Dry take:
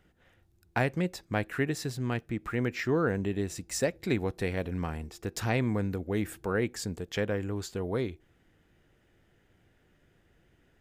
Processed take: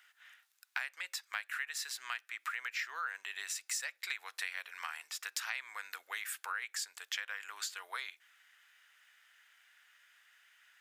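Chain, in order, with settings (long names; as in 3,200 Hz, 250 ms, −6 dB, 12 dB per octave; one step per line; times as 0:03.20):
high-pass filter 1,300 Hz 24 dB per octave
downward compressor 4 to 1, threshold −46 dBFS, peak gain reduction 15 dB
level +9 dB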